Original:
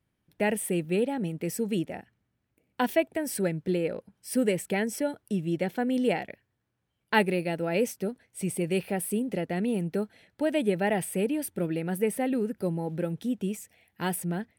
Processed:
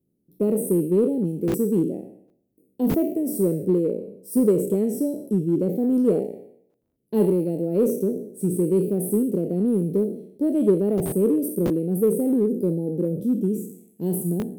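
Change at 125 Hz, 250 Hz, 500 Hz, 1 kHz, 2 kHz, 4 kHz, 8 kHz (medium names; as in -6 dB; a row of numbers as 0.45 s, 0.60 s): +6.5 dB, +8.0 dB, +6.5 dB, -9.0 dB, under -15 dB, under -10 dB, +0.5 dB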